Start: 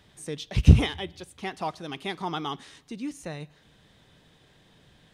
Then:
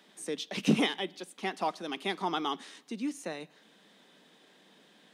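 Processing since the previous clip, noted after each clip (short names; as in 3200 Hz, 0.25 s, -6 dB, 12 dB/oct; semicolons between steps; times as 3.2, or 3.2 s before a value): steep high-pass 190 Hz 48 dB/oct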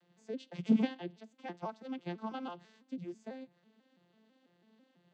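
arpeggiated vocoder major triad, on F3, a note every 0.165 s; gain -3.5 dB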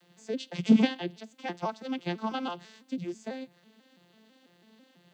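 high shelf 2300 Hz +8.5 dB; gain +7 dB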